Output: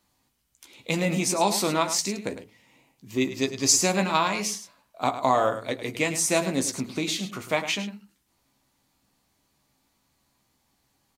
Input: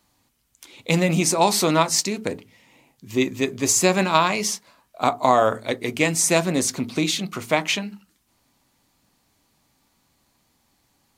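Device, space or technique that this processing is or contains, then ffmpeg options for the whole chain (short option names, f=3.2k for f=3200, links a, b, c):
slapback doubling: -filter_complex "[0:a]asettb=1/sr,asplit=3[a][b][c];[a]atrim=end=3.304[d];[b]atrim=start=3.3:end=3.76,asetpts=PTS-STARTPTS,afade=t=in:d=0.004:c=qsin,afade=t=out:st=0.456:d=0.004:c=qsin,equalizer=f=5k:t=o:w=0.65:g=12.5[e];[c]atrim=start=3.756[f];[d][e]acrossfade=d=0.004:c1=hsin:c2=qsin[g];[g][f]acrossfade=d=0.004:c1=qsin:c2=hsin,asplit=3[h][i][j];[i]adelay=15,volume=-7.5dB[k];[j]adelay=105,volume=-11dB[l];[h][k][l]amix=inputs=3:normalize=0,volume=-5.5dB"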